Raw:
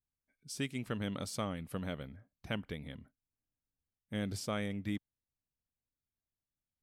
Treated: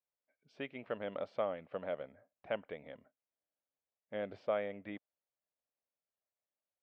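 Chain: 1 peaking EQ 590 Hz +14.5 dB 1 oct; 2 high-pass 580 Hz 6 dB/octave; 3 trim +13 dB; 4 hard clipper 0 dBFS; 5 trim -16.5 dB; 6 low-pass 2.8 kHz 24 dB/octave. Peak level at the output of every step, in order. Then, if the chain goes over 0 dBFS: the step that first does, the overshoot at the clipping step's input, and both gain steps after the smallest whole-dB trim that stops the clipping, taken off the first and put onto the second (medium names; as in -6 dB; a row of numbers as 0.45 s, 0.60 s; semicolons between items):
-16.0 dBFS, -17.5 dBFS, -4.5 dBFS, -4.5 dBFS, -21.0 dBFS, -21.5 dBFS; nothing clips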